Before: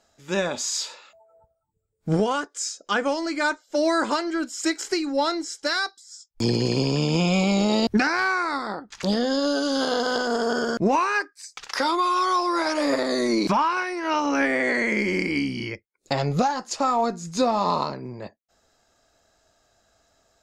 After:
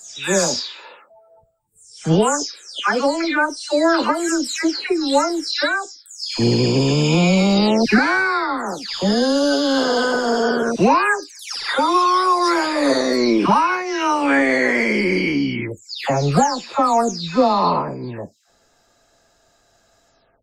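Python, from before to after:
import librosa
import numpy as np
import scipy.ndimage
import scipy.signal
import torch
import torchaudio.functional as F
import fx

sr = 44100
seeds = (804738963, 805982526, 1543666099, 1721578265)

y = fx.spec_delay(x, sr, highs='early', ms=340)
y = y * 10.0 ** (6.5 / 20.0)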